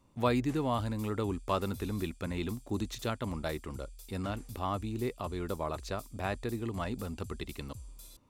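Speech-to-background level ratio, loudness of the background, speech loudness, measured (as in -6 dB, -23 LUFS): 15.5 dB, -51.0 LUFS, -35.5 LUFS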